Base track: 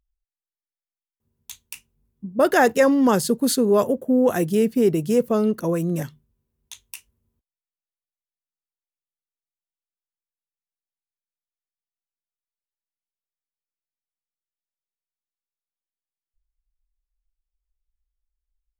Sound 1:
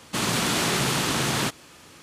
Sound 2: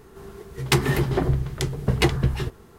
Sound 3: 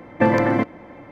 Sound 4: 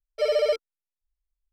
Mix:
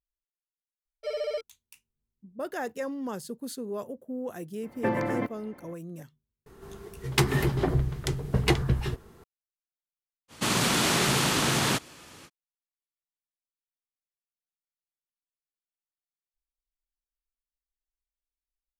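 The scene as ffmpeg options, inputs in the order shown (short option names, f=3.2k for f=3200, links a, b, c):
-filter_complex "[0:a]volume=-17dB[a];[4:a]atrim=end=1.52,asetpts=PTS-STARTPTS,volume=-9dB,afade=t=in:d=0.004:c=hsin,afade=t=out:st=1.516:d=0.004:c=hsin,adelay=850[b];[3:a]atrim=end=1.11,asetpts=PTS-STARTPTS,volume=-10.5dB,afade=t=in:d=0.004:c=hsin,afade=t=out:st=1.106:d=0.004:c=hsin,adelay=4630[c];[2:a]atrim=end=2.78,asetpts=PTS-STARTPTS,volume=-3.5dB,afade=t=in:d=0.004:c=hsin,afade=t=out:st=2.776:d=0.004:c=hsin,adelay=6460[d];[1:a]atrim=end=2.02,asetpts=PTS-STARTPTS,volume=-0.5dB,afade=t=in:d=0.05,afade=t=out:st=1.97:d=0.05,adelay=10280[e];[a][b][c][d][e]amix=inputs=5:normalize=0"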